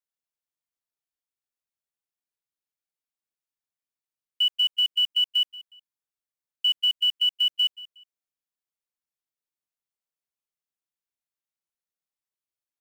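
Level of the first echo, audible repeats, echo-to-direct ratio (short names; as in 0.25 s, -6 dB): -19.0 dB, 2, -18.5 dB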